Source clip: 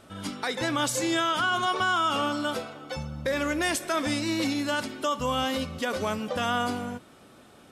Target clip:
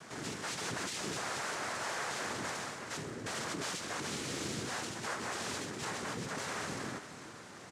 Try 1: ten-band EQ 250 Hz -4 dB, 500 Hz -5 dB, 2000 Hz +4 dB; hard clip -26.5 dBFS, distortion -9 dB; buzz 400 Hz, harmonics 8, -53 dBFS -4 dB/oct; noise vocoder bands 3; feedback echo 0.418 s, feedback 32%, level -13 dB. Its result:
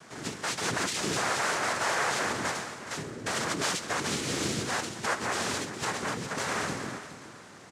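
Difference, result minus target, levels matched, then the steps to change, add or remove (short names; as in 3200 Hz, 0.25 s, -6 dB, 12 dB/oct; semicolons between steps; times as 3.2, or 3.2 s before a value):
hard clip: distortion -6 dB
change: hard clip -37.5 dBFS, distortion -3 dB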